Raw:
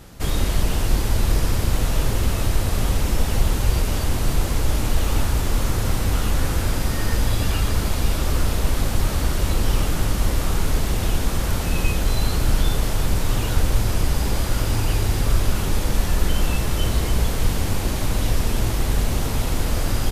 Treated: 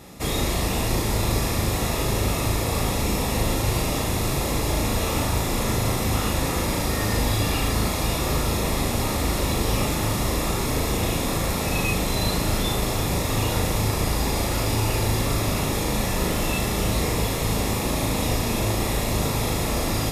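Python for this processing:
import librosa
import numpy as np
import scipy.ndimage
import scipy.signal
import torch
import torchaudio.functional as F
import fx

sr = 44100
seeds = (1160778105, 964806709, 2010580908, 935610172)

y = fx.notch_comb(x, sr, f0_hz=1500.0)
y = fx.room_flutter(y, sr, wall_m=6.5, rt60_s=0.45)
y = F.gain(torch.from_numpy(y), 2.0).numpy()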